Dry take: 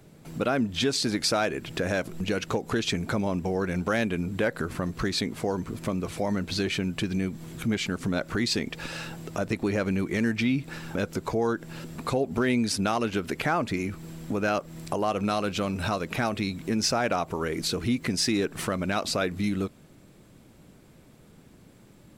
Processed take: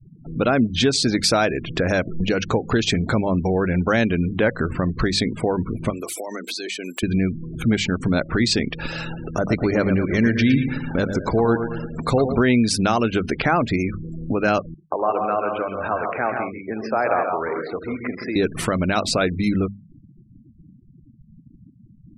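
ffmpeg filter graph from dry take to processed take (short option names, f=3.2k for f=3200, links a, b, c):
-filter_complex "[0:a]asettb=1/sr,asplit=3[a][b][c];[a]atrim=end=5.904[d];[b]atrim=start=5.9:end=7.03,asetpts=PTS-STARTPTS,afade=t=in:d=0.004:c=qsin,afade=t=out:st=1.126:d=0.004:c=qsin,highpass=f=300:w=0.5412,highpass=f=300:w=1.3066,aemphasis=mode=production:type=75fm,acompressor=threshold=-31dB:ratio=16:attack=3.2:release=140:knee=1:detection=peak[e];[c]atrim=start=7.026[f];[d][e]acrossfade=d=0.004:c1=hsin:c2=qsin[g];[g][f]acrossfade=d=0.004:c1=qsin:c2=hsin,asettb=1/sr,asplit=3[h][i][j];[h]atrim=end=9.054[k];[i]atrim=start=9.05:end=12.38,asetpts=PTS-STARTPTS,afade=t=in:d=0.004:c=qsin,afade=t=out:st=3.326:d=0.004:c=qsin,bandreject=f=2.5k:w=12,aecho=1:1:112|224|336|448|560|672:0.398|0.207|0.108|0.056|0.0291|0.0151,atrim=end_sample=146853[l];[j]atrim=start=12.376[m];[k][l]acrossfade=d=0.004:c1=hsin:c2=qsin[n];[n][m]acrossfade=d=0.004:c1=qsin:c2=hsin,asettb=1/sr,asplit=3[o][p][q];[o]atrim=end=14.744[r];[p]atrim=start=14.74:end=18.36,asetpts=PTS-STARTPTS,afade=t=in:d=0.004:c=qsin,afade=t=out:st=3.616:d=0.004:c=qsin,acrossover=split=370 2200:gain=0.141 1 0.0708[s][t][u];[s][t][u]amix=inputs=3:normalize=0,aeval=exprs='sgn(val(0))*max(abs(val(0))-0.00141,0)':c=same,aecho=1:1:73|132|164|192|538:0.224|0.501|0.422|0.133|0.1,atrim=end_sample=159642[v];[q]atrim=start=18.356[w];[r][v]acrossfade=d=0.004:c1=hsin:c2=qsin[x];[x][w]acrossfade=d=0.004:c1=qsin:c2=hsin,afftfilt=real='re*gte(hypot(re,im),0.0126)':imag='im*gte(hypot(re,im),0.0126)':win_size=1024:overlap=0.75,lowshelf=f=110:g=7.5,bandreject=f=50:t=h:w=6,bandreject=f=100:t=h:w=6,bandreject=f=150:t=h:w=6,bandreject=f=200:t=h:w=6,volume=6.5dB"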